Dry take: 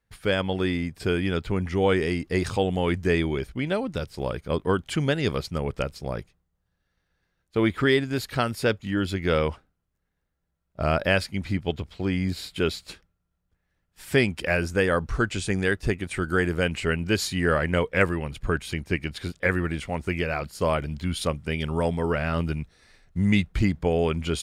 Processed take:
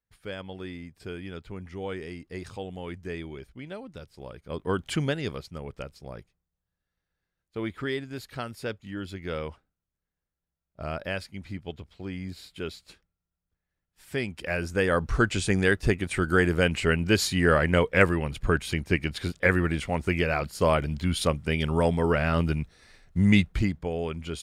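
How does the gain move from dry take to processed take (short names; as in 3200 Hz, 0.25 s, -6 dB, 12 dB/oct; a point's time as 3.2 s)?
4.36 s -13 dB
4.89 s 0 dB
5.43 s -10 dB
14.12 s -10 dB
15.15 s +1.5 dB
23.4 s +1.5 dB
23.86 s -7.5 dB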